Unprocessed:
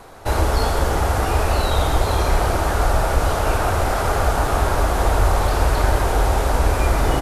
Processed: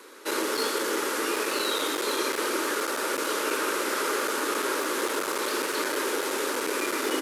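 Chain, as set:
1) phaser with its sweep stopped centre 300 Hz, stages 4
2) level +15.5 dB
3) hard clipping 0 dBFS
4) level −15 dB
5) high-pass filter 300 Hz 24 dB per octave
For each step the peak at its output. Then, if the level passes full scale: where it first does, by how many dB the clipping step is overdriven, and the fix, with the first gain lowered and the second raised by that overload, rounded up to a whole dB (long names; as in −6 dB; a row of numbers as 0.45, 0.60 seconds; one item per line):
−7.0, +8.5, 0.0, −15.0, −14.5 dBFS
step 2, 8.5 dB
step 2 +6.5 dB, step 4 −6 dB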